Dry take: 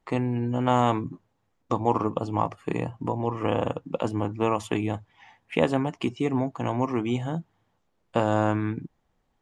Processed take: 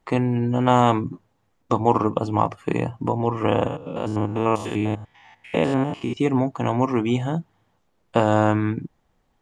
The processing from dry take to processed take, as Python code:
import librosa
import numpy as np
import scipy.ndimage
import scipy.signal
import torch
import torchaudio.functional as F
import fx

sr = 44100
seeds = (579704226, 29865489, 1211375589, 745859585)

y = fx.spec_steps(x, sr, hold_ms=100, at=(3.67, 6.17))
y = y * librosa.db_to_amplitude(5.0)